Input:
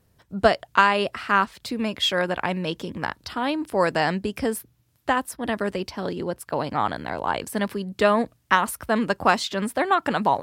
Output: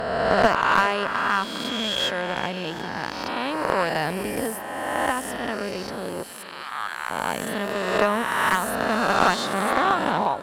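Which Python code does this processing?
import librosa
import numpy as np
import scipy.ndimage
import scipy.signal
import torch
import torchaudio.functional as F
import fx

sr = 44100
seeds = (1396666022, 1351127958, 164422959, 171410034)

p1 = fx.spec_swells(x, sr, rise_s=2.2)
p2 = fx.highpass_res(p1, sr, hz=fx.line((6.22, 2800.0), (7.09, 1200.0)), q=1.6, at=(6.22, 7.09), fade=0.02)
p3 = fx.cheby_harmonics(p2, sr, harmonics=(3, 4), levels_db=(-14, -34), full_scale_db=2.0)
p4 = p3 + fx.echo_feedback(p3, sr, ms=402, feedback_pct=45, wet_db=-16.0, dry=0)
p5 = fx.slew_limit(p4, sr, full_power_hz=340.0)
y = p5 * librosa.db_to_amplitude(1.5)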